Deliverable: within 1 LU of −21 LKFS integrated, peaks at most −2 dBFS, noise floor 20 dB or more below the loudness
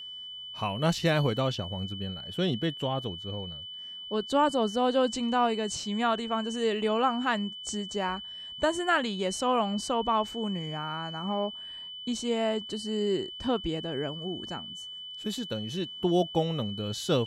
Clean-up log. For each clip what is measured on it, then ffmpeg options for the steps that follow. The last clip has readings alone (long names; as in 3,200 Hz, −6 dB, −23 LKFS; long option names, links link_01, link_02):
interfering tone 3,000 Hz; level of the tone −39 dBFS; integrated loudness −30.0 LKFS; sample peak −12.5 dBFS; target loudness −21.0 LKFS
→ -af "bandreject=frequency=3000:width=30"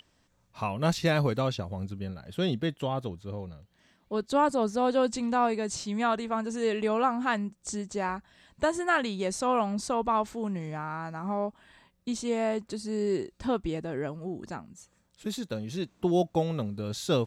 interfering tone none found; integrated loudness −30.0 LKFS; sample peak −12.5 dBFS; target loudness −21.0 LKFS
→ -af "volume=9dB"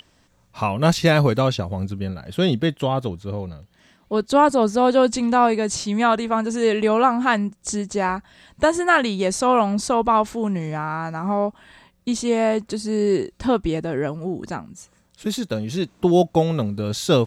integrated loudness −21.0 LKFS; sample peak −3.5 dBFS; background noise floor −60 dBFS